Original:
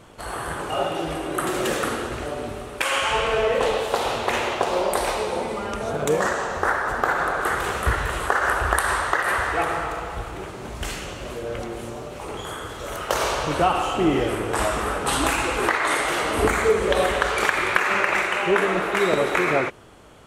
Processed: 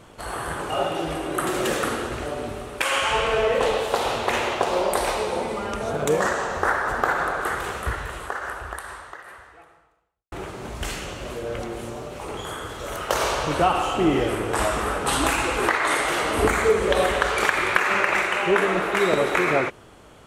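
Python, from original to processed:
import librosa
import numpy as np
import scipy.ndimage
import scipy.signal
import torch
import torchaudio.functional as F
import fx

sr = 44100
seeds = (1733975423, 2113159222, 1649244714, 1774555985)

y = fx.edit(x, sr, fx.fade_out_span(start_s=7.02, length_s=3.3, curve='qua'), tone=tone)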